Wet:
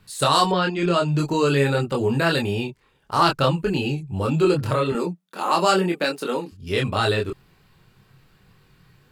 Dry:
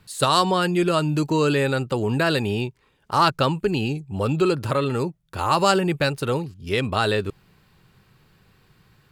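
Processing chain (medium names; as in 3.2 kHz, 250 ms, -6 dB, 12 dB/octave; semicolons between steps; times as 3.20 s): 4.92–6.52 s: elliptic high-pass 180 Hz, stop band 40 dB; chorus voices 6, 0.45 Hz, delay 25 ms, depth 4.6 ms; 0.51–1.17 s: low-pass 4.7 kHz -> 9.4 kHz 24 dB/octave; trim +3.5 dB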